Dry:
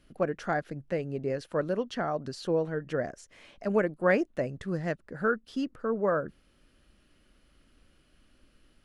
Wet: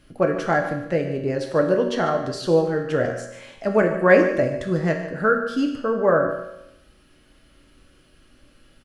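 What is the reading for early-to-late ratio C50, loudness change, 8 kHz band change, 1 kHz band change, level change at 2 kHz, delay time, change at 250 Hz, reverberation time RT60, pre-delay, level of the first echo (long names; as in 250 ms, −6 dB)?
6.0 dB, +9.5 dB, can't be measured, +9.0 dB, +10.0 dB, 147 ms, +9.0 dB, 0.85 s, 4 ms, −12.5 dB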